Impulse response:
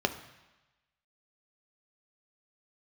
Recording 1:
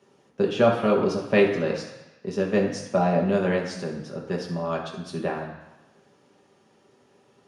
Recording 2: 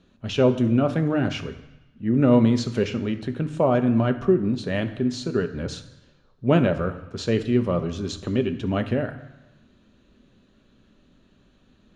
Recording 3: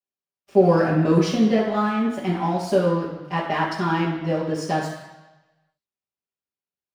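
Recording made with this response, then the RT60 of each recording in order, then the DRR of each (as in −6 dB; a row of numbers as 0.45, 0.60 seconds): 2; 1.1, 1.1, 1.1 seconds; −2.5, 7.0, −11.0 decibels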